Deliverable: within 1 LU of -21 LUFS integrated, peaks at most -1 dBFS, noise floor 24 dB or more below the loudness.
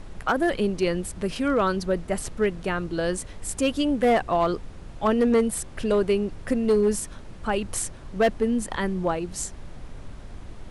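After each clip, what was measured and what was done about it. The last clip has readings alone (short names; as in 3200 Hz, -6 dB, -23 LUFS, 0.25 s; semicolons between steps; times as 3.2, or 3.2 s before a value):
clipped 0.7%; flat tops at -14.5 dBFS; noise floor -42 dBFS; noise floor target -49 dBFS; loudness -25.0 LUFS; peak -14.5 dBFS; loudness target -21.0 LUFS
-> clip repair -14.5 dBFS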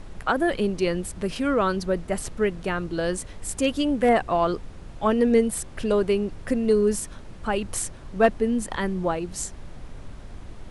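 clipped 0.0%; noise floor -42 dBFS; noise floor target -49 dBFS
-> noise print and reduce 7 dB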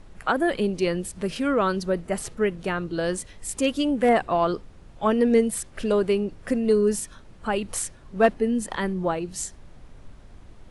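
noise floor -48 dBFS; noise floor target -49 dBFS
-> noise print and reduce 6 dB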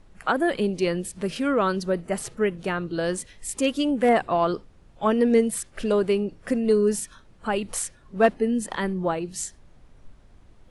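noise floor -54 dBFS; loudness -25.0 LUFS; peak -5.5 dBFS; loudness target -21.0 LUFS
-> gain +4 dB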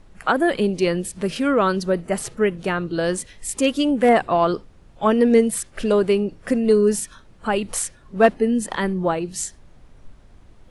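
loudness -21.0 LUFS; peak -1.5 dBFS; noise floor -50 dBFS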